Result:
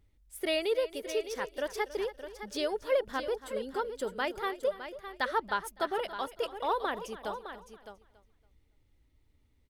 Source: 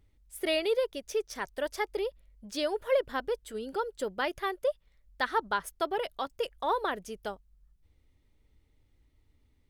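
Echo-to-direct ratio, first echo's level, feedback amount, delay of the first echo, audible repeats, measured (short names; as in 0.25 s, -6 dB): -9.5 dB, -16.0 dB, no steady repeat, 0.28 s, 4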